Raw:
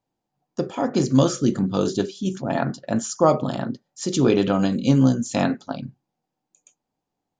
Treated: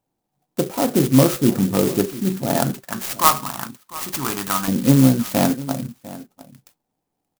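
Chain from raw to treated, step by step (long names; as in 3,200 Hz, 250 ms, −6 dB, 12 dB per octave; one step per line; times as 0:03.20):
0:02.80–0:04.68: low shelf with overshoot 750 Hz −12 dB, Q 3
slap from a distant wall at 120 metres, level −17 dB
converter with an unsteady clock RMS 0.1 ms
level +3.5 dB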